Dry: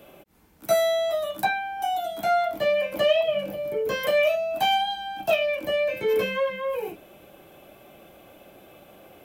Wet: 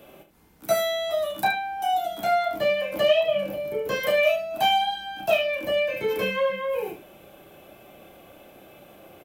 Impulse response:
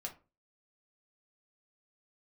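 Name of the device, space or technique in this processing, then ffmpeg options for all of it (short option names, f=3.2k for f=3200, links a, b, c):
slapback doubling: -filter_complex "[0:a]asplit=3[a][b][c];[b]adelay=31,volume=-8dB[d];[c]adelay=74,volume=-10.5dB[e];[a][d][e]amix=inputs=3:normalize=0"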